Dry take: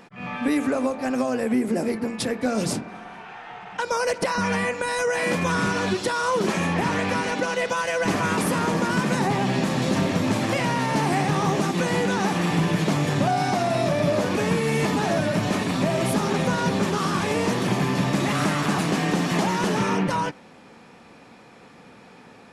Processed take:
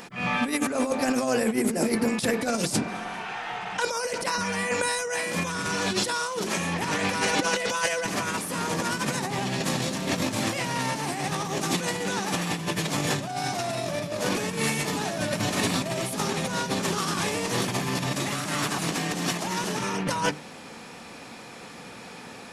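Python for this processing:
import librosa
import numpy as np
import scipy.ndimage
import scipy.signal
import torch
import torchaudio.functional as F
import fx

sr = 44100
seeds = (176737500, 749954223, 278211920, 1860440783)

y = fx.high_shelf(x, sr, hz=3700.0, db=11.0)
y = fx.hum_notches(y, sr, base_hz=50, count=9)
y = fx.over_compress(y, sr, threshold_db=-26.0, ratio=-0.5)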